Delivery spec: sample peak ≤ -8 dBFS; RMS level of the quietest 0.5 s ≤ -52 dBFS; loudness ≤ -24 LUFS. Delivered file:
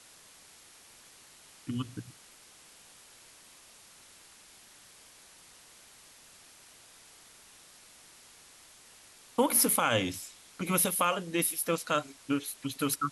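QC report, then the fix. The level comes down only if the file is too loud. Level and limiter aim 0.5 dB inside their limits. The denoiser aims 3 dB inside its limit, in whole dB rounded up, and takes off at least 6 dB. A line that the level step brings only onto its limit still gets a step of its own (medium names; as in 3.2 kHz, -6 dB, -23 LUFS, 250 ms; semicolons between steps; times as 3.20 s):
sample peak -12.5 dBFS: pass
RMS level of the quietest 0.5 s -56 dBFS: pass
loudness -29.5 LUFS: pass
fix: none needed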